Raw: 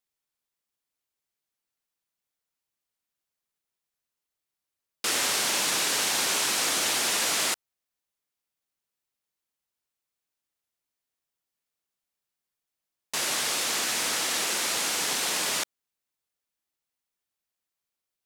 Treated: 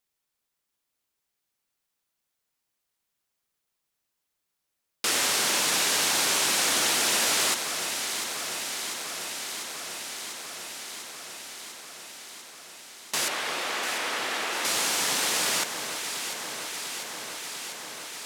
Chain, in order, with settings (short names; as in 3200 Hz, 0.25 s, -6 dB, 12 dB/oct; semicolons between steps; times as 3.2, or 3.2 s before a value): 13.28–14.65 tone controls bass -11 dB, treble -13 dB; echo with dull and thin repeats by turns 0.348 s, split 1700 Hz, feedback 86%, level -8 dB; in parallel at -3 dB: compressor, threshold -39 dBFS, peak gain reduction 15.5 dB